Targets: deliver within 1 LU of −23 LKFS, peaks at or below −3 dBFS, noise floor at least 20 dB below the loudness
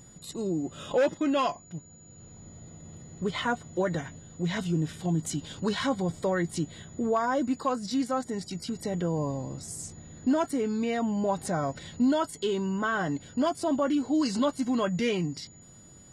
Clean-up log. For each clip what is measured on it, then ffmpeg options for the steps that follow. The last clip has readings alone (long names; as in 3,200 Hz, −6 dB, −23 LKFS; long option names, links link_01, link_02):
interfering tone 6,900 Hz; level of the tone −53 dBFS; integrated loudness −29.5 LKFS; sample peak −16.5 dBFS; target loudness −23.0 LKFS
→ -af "bandreject=frequency=6900:width=30"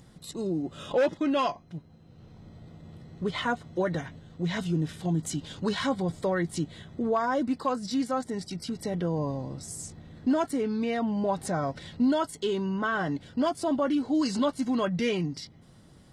interfering tone none found; integrated loudness −29.5 LKFS; sample peak −16.5 dBFS; target loudness −23.0 LKFS
→ -af "volume=6.5dB"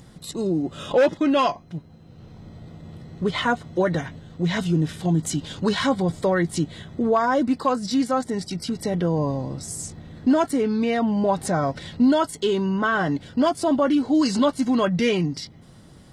integrated loudness −23.0 LKFS; sample peak −10.0 dBFS; background noise floor −48 dBFS